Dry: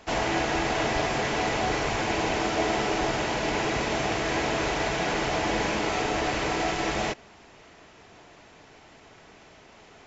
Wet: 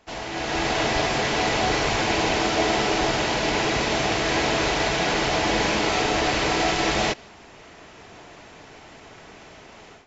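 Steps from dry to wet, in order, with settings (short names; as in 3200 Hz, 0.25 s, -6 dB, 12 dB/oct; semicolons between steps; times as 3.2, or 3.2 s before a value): dynamic EQ 4200 Hz, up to +5 dB, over -49 dBFS, Q 1.2; AGC gain up to 14.5 dB; gain -8 dB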